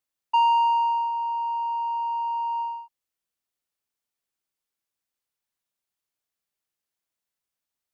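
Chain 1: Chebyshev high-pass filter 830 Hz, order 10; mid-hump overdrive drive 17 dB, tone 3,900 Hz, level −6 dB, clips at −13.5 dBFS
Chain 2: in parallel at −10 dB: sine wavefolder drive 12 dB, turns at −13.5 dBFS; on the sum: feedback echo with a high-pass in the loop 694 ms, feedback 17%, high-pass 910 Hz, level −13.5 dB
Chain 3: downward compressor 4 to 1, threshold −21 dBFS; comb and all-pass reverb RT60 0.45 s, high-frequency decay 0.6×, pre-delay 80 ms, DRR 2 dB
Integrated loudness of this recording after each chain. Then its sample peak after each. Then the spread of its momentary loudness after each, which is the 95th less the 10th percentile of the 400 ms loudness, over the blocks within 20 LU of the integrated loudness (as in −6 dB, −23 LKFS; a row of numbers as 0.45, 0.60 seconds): −20.5, −20.0, −21.5 LKFS; −14.0, −14.5, −12.5 dBFS; 7, 16, 9 LU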